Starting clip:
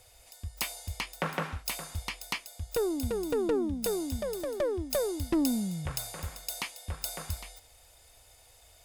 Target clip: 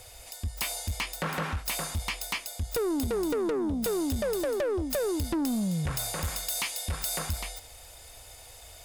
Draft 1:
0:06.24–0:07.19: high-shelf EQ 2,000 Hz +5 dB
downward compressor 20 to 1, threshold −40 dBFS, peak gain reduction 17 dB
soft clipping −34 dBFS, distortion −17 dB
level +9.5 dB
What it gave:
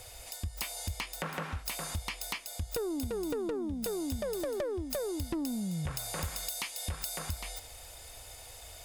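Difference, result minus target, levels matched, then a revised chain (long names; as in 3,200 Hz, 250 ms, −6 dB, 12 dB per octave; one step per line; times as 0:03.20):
downward compressor: peak gain reduction +8.5 dB
0:06.24–0:07.19: high-shelf EQ 2,000 Hz +5 dB
downward compressor 20 to 1, threshold −31 dBFS, peak gain reduction 8.5 dB
soft clipping −34 dBFS, distortion −12 dB
level +9.5 dB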